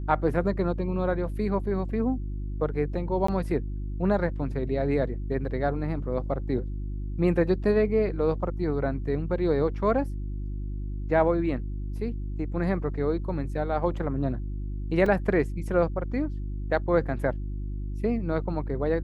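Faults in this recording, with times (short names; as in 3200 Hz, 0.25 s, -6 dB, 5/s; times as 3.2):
hum 50 Hz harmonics 7 -32 dBFS
3.27–3.28 gap 14 ms
15.06 gap 3.3 ms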